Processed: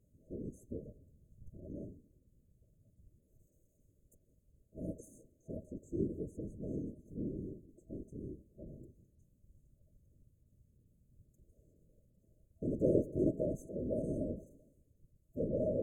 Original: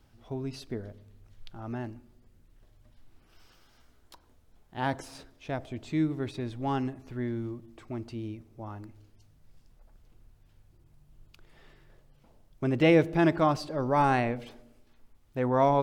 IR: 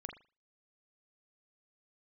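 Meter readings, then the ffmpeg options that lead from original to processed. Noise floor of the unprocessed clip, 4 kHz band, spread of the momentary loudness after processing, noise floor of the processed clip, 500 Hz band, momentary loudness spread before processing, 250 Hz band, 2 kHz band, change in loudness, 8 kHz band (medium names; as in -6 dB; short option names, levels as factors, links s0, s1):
-62 dBFS, under -40 dB, 19 LU, -73 dBFS, -8.5 dB, 19 LU, -9.0 dB, under -40 dB, -10.0 dB, -10.5 dB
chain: -af "afftfilt=real='hypot(re,im)*cos(2*PI*random(0))':imag='hypot(re,im)*sin(2*PI*random(1))':win_size=512:overlap=0.75,afftfilt=real='re*(1-between(b*sr/4096,650,6200))':imag='im*(1-between(b*sr/4096,650,6200))':win_size=4096:overlap=0.75,volume=0.75"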